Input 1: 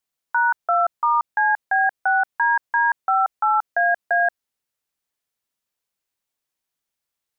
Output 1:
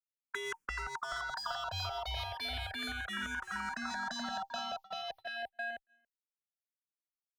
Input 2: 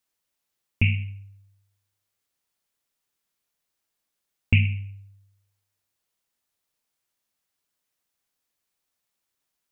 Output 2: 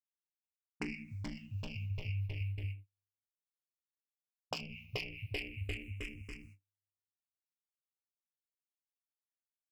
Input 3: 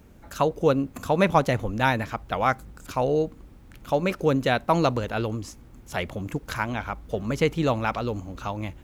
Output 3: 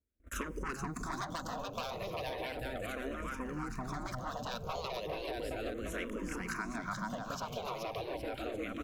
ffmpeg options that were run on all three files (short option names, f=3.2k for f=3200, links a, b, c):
-filter_complex "[0:a]lowshelf=f=290:g=4,aeval=exprs='0.251*(abs(mod(val(0)/0.251+3,4)-2)-1)':c=same,acrossover=split=890[a][b];[a]aeval=exprs='val(0)*(1-0.5/2+0.5/2*cos(2*PI*4.7*n/s))':c=same[c];[b]aeval=exprs='val(0)*(1-0.5/2-0.5/2*cos(2*PI*4.7*n/s))':c=same[d];[c][d]amix=inputs=2:normalize=0,asuperstop=centerf=850:order=12:qfactor=6.7,asoftclip=type=tanh:threshold=-20.5dB,aecho=1:1:430|817|1165|1479|1761:0.631|0.398|0.251|0.158|0.1,asubboost=boost=2.5:cutoff=150,agate=range=-41dB:threshold=-41dB:ratio=16:detection=peak,afftfilt=real='re*lt(hypot(re,im),0.2)':imag='im*lt(hypot(re,im),0.2)':win_size=1024:overlap=0.75,acompressor=threshold=-38dB:ratio=10,asplit=2[e][f];[f]afreqshift=-0.35[g];[e][g]amix=inputs=2:normalize=1,volume=5.5dB"